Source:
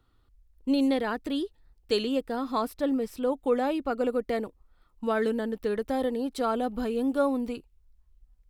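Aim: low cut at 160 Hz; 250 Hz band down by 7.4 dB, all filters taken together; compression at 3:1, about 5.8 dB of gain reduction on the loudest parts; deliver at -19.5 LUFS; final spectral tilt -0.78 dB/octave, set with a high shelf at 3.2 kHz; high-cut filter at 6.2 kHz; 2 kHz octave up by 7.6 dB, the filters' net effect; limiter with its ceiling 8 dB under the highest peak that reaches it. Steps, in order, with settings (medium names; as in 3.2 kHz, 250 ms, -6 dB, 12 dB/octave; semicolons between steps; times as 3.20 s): high-pass 160 Hz; low-pass 6.2 kHz; peaking EQ 250 Hz -7.5 dB; peaking EQ 2 kHz +8 dB; treble shelf 3.2 kHz +7.5 dB; compression 3:1, threshold -28 dBFS; trim +16 dB; peak limiter -9 dBFS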